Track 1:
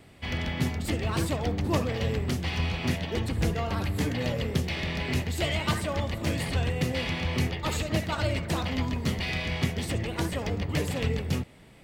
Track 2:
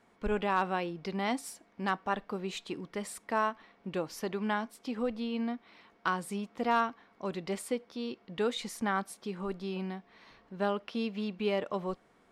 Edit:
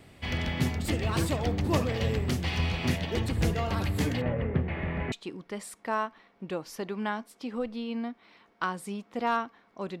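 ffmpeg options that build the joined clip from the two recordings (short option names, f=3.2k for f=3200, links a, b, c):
-filter_complex "[0:a]asplit=3[a][b][c];[a]afade=t=out:st=4.2:d=0.02[d];[b]lowpass=f=2k:w=0.5412,lowpass=f=2k:w=1.3066,afade=t=in:st=4.2:d=0.02,afade=t=out:st=5.12:d=0.02[e];[c]afade=t=in:st=5.12:d=0.02[f];[d][e][f]amix=inputs=3:normalize=0,apad=whole_dur=10,atrim=end=10,atrim=end=5.122[g];[1:a]atrim=start=2.558:end=7.44[h];[g][h]acrossfade=d=0.004:c1=hsin:c2=hsin"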